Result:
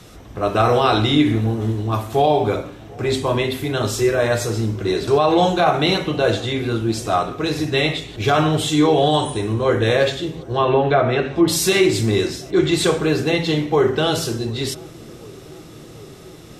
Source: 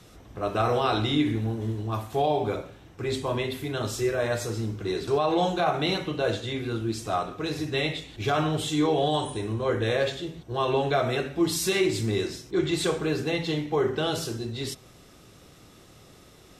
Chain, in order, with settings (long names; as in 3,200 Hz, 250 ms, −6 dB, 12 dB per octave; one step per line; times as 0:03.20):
0:10.36–0:11.48: treble cut that deepens with the level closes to 2,100 Hz, closed at −20.5 dBFS
on a send: feedback echo with a low-pass in the loop 741 ms, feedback 84%, low-pass 890 Hz, level −23 dB
on the sum: level +8.5 dB